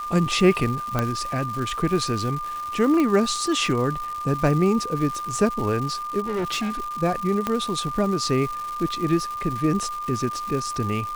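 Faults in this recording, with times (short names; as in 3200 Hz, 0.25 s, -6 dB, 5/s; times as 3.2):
crackle 380/s -30 dBFS
tone 1200 Hz -28 dBFS
0.99 pop -9 dBFS
3 pop -12 dBFS
6.26–6.98 clipped -22.5 dBFS
7.47 pop -10 dBFS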